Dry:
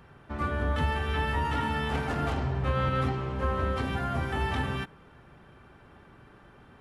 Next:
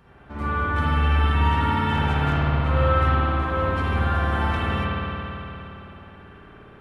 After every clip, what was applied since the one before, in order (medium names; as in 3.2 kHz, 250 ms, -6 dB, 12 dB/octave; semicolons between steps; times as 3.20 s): spring tank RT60 3.4 s, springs 55 ms, chirp 30 ms, DRR -8.5 dB; trim -2 dB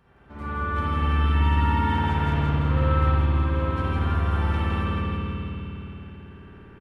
feedback delay 165 ms, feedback 57%, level -3 dB; trim -6.5 dB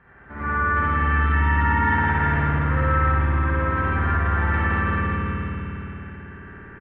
in parallel at +3 dB: peak limiter -20 dBFS, peak gain reduction 11 dB; on the sum: resonant low-pass 1.8 kHz, resonance Q 4.1; trim -4.5 dB